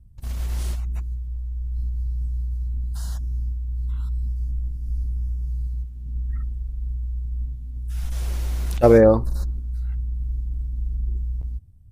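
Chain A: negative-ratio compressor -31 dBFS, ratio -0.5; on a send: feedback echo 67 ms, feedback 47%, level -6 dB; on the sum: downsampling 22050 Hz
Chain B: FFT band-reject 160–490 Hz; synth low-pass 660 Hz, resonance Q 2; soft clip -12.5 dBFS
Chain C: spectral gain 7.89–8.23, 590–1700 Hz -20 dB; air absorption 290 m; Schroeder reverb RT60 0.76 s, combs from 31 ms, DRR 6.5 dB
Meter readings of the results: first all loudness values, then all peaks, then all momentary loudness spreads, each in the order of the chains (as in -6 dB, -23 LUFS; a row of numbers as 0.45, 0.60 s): -30.0, -27.5, -25.5 LUFS; -13.5, -12.5, -3.0 dBFS; 9, 8, 12 LU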